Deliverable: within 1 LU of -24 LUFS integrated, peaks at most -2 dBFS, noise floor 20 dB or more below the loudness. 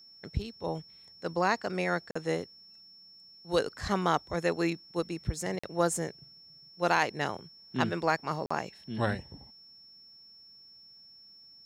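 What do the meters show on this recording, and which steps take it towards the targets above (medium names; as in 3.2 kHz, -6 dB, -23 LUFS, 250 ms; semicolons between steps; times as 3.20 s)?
dropouts 3; longest dropout 45 ms; steady tone 5.4 kHz; tone level -52 dBFS; loudness -32.0 LUFS; peak level -12.5 dBFS; loudness target -24.0 LUFS
-> interpolate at 2.11/5.59/8.46 s, 45 ms; band-stop 5.4 kHz, Q 30; trim +8 dB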